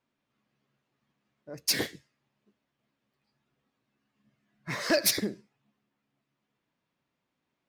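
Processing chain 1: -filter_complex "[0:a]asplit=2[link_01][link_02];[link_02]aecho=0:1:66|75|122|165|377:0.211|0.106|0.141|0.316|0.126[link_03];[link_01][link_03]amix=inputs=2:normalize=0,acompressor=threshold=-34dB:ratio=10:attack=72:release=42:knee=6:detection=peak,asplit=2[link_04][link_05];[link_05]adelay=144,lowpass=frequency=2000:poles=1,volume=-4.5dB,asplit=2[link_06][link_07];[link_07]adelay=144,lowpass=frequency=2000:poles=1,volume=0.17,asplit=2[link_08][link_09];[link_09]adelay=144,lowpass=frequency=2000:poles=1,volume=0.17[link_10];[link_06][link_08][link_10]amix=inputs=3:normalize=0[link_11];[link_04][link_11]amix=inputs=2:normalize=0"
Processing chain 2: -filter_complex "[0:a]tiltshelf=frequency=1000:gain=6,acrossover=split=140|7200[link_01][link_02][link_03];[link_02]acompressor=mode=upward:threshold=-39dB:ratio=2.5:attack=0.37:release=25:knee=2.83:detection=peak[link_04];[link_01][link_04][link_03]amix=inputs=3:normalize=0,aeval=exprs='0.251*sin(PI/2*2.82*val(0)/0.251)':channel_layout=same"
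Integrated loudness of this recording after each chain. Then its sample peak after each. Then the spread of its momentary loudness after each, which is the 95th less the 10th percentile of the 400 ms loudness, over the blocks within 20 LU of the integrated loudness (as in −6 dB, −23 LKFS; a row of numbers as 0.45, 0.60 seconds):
−32.5, −21.5 LKFS; −15.5, −12.0 dBFS; 18, 15 LU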